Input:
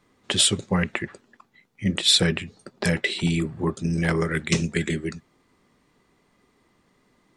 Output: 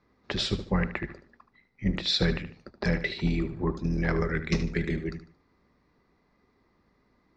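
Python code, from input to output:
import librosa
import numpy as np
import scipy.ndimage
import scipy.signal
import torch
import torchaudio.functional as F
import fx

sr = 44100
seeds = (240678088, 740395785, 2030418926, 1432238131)

y = fx.octave_divider(x, sr, octaves=2, level_db=-5.0)
y = scipy.signal.sosfilt(scipy.signal.butter(6, 5300.0, 'lowpass', fs=sr, output='sos'), y)
y = fx.peak_eq(y, sr, hz=3100.0, db=-11.5, octaves=0.45)
y = fx.echo_feedback(y, sr, ms=75, feedback_pct=33, wet_db=-12)
y = F.gain(torch.from_numpy(y), -4.0).numpy()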